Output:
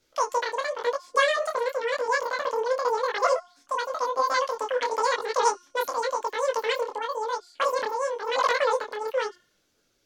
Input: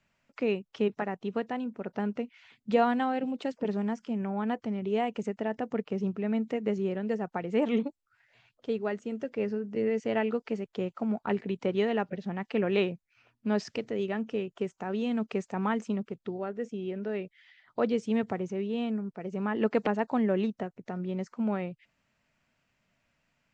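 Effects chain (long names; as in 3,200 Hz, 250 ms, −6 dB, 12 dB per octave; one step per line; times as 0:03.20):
wrong playback speed 33 rpm record played at 78 rpm
hum removal 356.2 Hz, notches 33
micro pitch shift up and down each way 33 cents
level +8 dB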